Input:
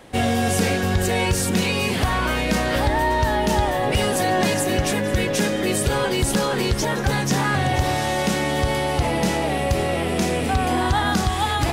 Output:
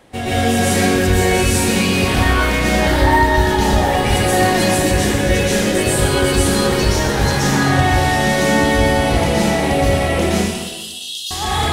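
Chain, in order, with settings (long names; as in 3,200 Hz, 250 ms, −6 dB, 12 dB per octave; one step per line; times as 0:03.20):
0:10.29–0:11.31: linear-phase brick-wall high-pass 2,600 Hz
dense smooth reverb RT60 1.2 s, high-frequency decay 0.95×, pre-delay 105 ms, DRR −8.5 dB
level −3.5 dB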